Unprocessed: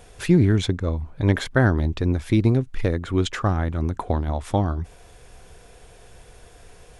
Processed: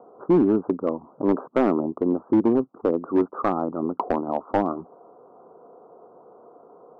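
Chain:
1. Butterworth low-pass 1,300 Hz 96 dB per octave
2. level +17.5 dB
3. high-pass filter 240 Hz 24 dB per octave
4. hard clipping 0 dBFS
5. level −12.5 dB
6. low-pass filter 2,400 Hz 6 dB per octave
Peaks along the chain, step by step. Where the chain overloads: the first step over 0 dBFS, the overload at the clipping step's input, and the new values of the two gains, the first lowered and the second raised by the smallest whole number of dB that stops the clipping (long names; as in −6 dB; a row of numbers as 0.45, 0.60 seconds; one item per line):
−7.0, +10.5, +9.5, 0.0, −12.5, −12.5 dBFS
step 2, 9.5 dB
step 2 +7.5 dB, step 5 −2.5 dB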